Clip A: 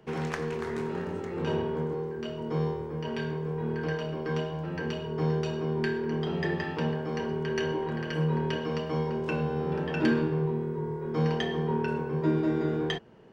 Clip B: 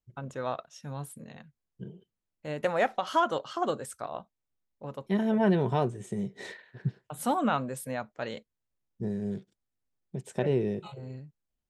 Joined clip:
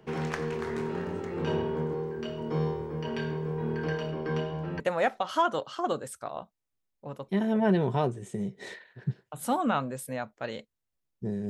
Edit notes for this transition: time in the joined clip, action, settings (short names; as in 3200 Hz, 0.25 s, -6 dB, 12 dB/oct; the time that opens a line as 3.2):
clip A
4.11–4.8 high shelf 5600 Hz -6.5 dB
4.8 switch to clip B from 2.58 s